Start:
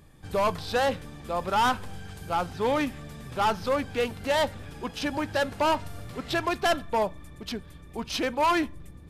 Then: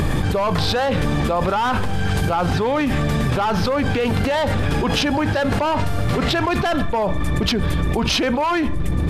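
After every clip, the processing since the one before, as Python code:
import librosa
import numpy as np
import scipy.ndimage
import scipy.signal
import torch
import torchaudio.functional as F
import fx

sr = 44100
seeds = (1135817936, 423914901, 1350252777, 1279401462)

y = fx.high_shelf(x, sr, hz=5600.0, db=-10.0)
y = fx.env_flatten(y, sr, amount_pct=100)
y = y * 10.0 ** (2.0 / 20.0)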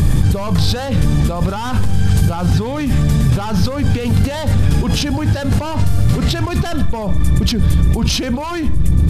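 y = fx.bass_treble(x, sr, bass_db=14, treble_db=12)
y = y * 10.0 ** (-5.0 / 20.0)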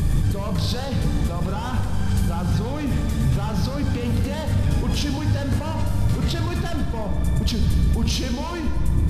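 y = fx.rev_plate(x, sr, seeds[0], rt60_s=2.9, hf_ratio=0.6, predelay_ms=0, drr_db=4.0)
y = y * 10.0 ** (-8.5 / 20.0)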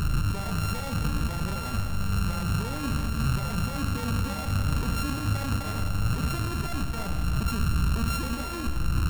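y = np.r_[np.sort(x[:len(x) // 32 * 32].reshape(-1, 32), axis=1).ravel(), x[len(x) // 32 * 32:]]
y = y * 10.0 ** (-5.5 / 20.0)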